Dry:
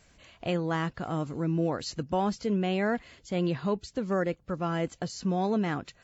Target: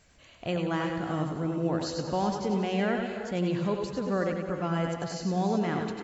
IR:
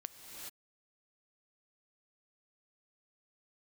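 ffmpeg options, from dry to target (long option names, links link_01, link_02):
-filter_complex "[0:a]aecho=1:1:89|178|267|356|445|534:0.316|0.177|0.0992|0.0555|0.0311|0.0174,asplit=2[link_01][link_02];[1:a]atrim=start_sample=2205,asetrate=66150,aresample=44100,adelay=101[link_03];[link_02][link_03]afir=irnorm=-1:irlink=0,volume=2dB[link_04];[link_01][link_04]amix=inputs=2:normalize=0,volume=-1.5dB"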